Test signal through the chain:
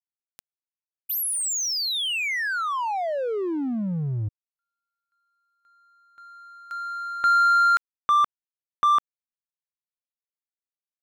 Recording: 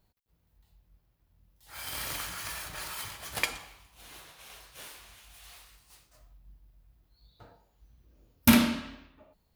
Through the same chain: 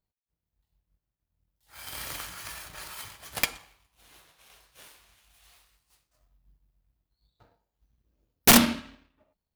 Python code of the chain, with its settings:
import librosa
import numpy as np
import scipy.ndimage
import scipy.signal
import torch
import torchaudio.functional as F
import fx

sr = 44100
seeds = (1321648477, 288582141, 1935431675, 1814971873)

y = (np.mod(10.0 ** (13.5 / 20.0) * x + 1.0, 2.0) - 1.0) / 10.0 ** (13.5 / 20.0)
y = fx.power_curve(y, sr, exponent=1.4)
y = y * librosa.db_to_amplitude(6.0)